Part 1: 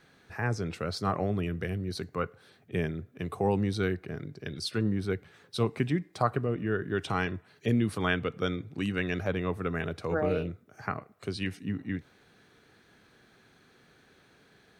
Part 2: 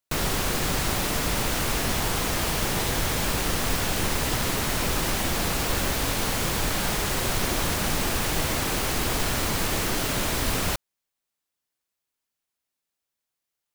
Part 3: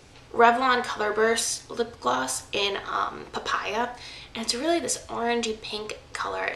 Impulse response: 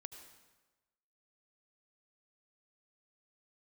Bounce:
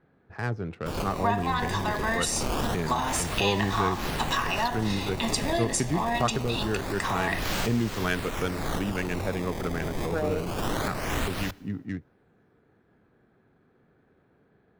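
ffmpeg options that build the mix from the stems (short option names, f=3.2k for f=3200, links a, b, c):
-filter_complex "[0:a]adynamicsmooth=sensitivity=5.5:basefreq=1.1k,volume=0dB,asplit=2[a][b];[1:a]lowpass=f=12k:w=0.5412,lowpass=f=12k:w=1.3066,acrusher=samples=18:mix=1:aa=0.000001:lfo=1:lforange=28.8:lforate=0.25,adelay=750,volume=-0.5dB,asplit=2[c][d];[d]volume=-17dB[e];[2:a]aecho=1:1:1.1:0.87,dynaudnorm=f=200:g=17:m=11.5dB,adelay=850,volume=-2dB[f];[b]apad=whole_len=639146[g];[c][g]sidechaincompress=threshold=-42dB:ratio=3:attack=26:release=200[h];[h][f]amix=inputs=2:normalize=0,acompressor=threshold=-24dB:ratio=6,volume=0dB[i];[3:a]atrim=start_sample=2205[j];[e][j]afir=irnorm=-1:irlink=0[k];[a][i][k]amix=inputs=3:normalize=0"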